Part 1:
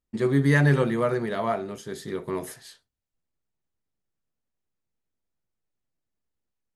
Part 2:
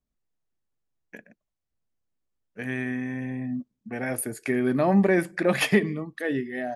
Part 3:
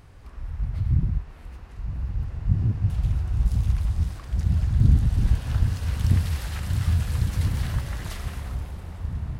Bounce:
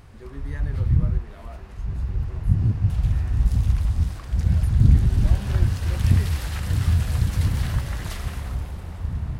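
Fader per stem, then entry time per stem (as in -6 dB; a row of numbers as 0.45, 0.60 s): -19.5, -19.0, +2.5 dB; 0.00, 0.45, 0.00 s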